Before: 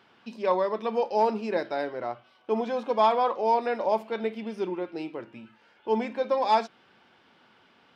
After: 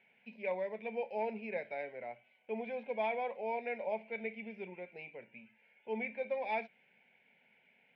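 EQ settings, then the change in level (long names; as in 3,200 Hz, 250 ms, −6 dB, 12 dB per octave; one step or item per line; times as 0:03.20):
transistor ladder low-pass 2,400 Hz, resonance 80%
phaser with its sweep stopped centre 320 Hz, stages 6
+1.5 dB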